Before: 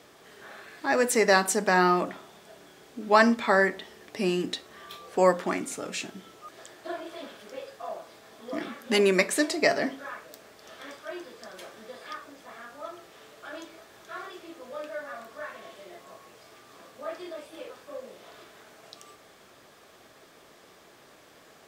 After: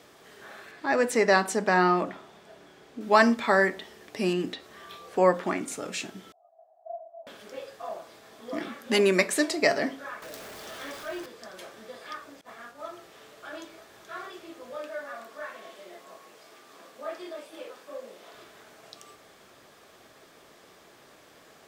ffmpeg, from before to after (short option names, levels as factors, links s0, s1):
-filter_complex "[0:a]asettb=1/sr,asplit=3[s0][s1][s2];[s0]atrim=end=0.714[s3];[s1]atrim=start=0.71:end=3.01,asetpts=PTS-STARTPTS,afade=t=in:d=0.004:c=qsin,afade=t=out:st=2.296:d=0.004:c=qsin,lowpass=f=3900:p=1[s4];[s2]atrim=start=3.006[s5];[s3][s4]acrossfade=d=0.004:c1=hsin:c2=qsin[s6];[s6][s5]acrossfade=d=0.004:c1=qsin:c2=hsin,asettb=1/sr,asplit=3[s7][s8][s9];[s7]atrim=end=4.334[s10];[s8]atrim=start=4.33:end=5.68,asetpts=PTS-STARTPTS,afade=t=in:d=0.004:c=qsin,afade=t=out:st=1.346:d=0.004:c=qsin,acrossover=split=3600[s11][s12];[s12]acompressor=threshold=0.00282:ratio=4:attack=1:release=60[s13];[s11][s13]amix=inputs=2:normalize=0[s14];[s9]atrim=start=5.676[s15];[s10][s14]acrossfade=d=0.004:c1=hsin:c2=qsin[s16];[s16][s15]acrossfade=d=0.004:c1=qsin:c2=hsin,asettb=1/sr,asplit=3[s17][s18][s19];[s17]atrim=end=6.324[s20];[s18]atrim=start=6.32:end=7.27,asetpts=PTS-STARTPTS,afade=t=in:d=0.004:c=qsin,afade=t=out:st=0.946:d=0.004:c=qsin,asuperpass=centerf=700:order=4:qfactor=6.1[s21];[s19]atrim=start=7.266[s22];[s20][s21]acrossfade=d=0.004:c1=hsin:c2=qsin[s23];[s23][s22]acrossfade=d=0.004:c1=qsin:c2=hsin,asettb=1/sr,asplit=3[s24][s25][s26];[s24]atrim=end=10.224[s27];[s25]atrim=start=10.22:end=11.26,asetpts=PTS-STARTPTS,afade=t=in:d=0.004:c=qsin,afade=t=out:st=1.036:d=0.004:c=qsin,aeval=exprs='val(0)+0.5*0.01*sgn(val(0))':c=same[s28];[s26]atrim=start=11.256[s29];[s27][s28]acrossfade=d=0.004:c1=hsin:c2=qsin[s30];[s30][s29]acrossfade=d=0.004:c1=qsin:c2=hsin,asettb=1/sr,asplit=3[s31][s32][s33];[s31]atrim=end=12.414[s34];[s32]atrim=start=12.41:end=12.88,asetpts=PTS-STARTPTS,afade=t=in:d=0.004:c=qsin,afade=t=out:st=0.466:d=0.004:c=qsin,agate=range=0.0224:threshold=0.00562:ratio=3:release=100:detection=peak[s35];[s33]atrim=start=12.876[s36];[s34][s35]acrossfade=d=0.004:c1=hsin:c2=qsin[s37];[s37][s36]acrossfade=d=0.004:c1=qsin:c2=hsin,asettb=1/sr,asplit=3[s38][s39][s40];[s38]atrim=end=14.774[s41];[s39]atrim=start=14.77:end=18.35,asetpts=PTS-STARTPTS,afade=t=in:d=0.004:c=qsin,afade=t=out:st=3.576:d=0.004:c=qsin,highpass=200[s42];[s40]atrim=start=18.346[s43];[s41][s42]acrossfade=d=0.004:c1=hsin:c2=qsin[s44];[s44][s43]acrossfade=d=0.004:c1=qsin:c2=hsin"